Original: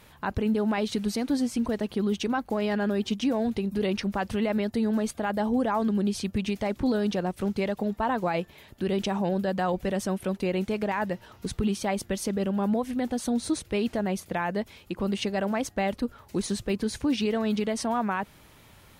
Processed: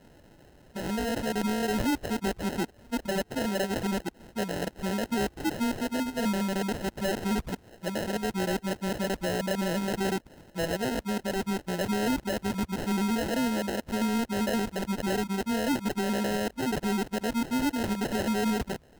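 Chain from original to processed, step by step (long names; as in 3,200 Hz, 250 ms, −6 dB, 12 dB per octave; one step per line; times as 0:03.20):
played backwards from end to start
graphic EQ with 15 bands 100 Hz −11 dB, 1,000 Hz −11 dB, 10,000 Hz −5 dB
gain into a clipping stage and back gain 23 dB
high shelf with overshoot 7,100 Hz −12.5 dB, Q 3
decimation without filtering 38×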